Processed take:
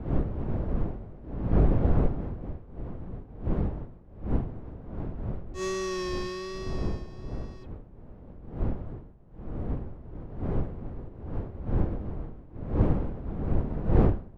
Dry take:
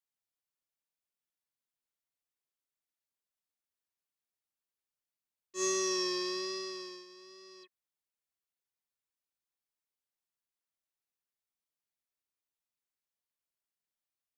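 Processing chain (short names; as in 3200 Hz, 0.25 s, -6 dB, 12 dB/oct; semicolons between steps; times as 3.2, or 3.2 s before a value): spectral whitening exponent 0.6; wind noise 490 Hz -40 dBFS; RIAA curve playback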